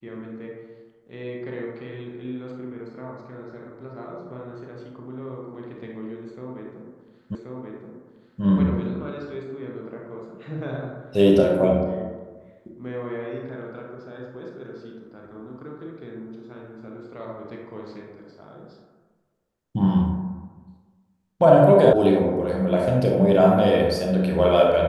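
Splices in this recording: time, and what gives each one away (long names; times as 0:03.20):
0:07.35: the same again, the last 1.08 s
0:21.93: cut off before it has died away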